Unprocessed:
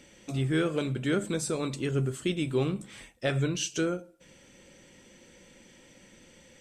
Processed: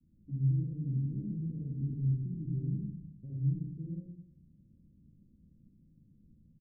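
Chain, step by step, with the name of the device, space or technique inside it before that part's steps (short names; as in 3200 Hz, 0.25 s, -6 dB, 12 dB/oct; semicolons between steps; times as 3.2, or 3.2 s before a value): expander -51 dBFS; club heard from the street (limiter -26.5 dBFS, peak gain reduction 11 dB; LPF 200 Hz 24 dB/oct; reverb RT60 0.70 s, pre-delay 57 ms, DRR -1 dB); doubler 13 ms -12 dB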